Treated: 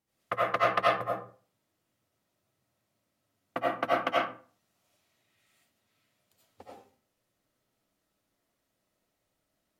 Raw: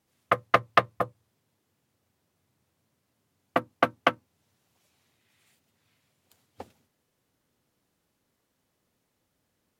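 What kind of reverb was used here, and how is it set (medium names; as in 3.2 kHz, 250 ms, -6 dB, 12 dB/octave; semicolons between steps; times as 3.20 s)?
algorithmic reverb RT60 0.42 s, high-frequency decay 0.65×, pre-delay 50 ms, DRR -7 dB; trim -10 dB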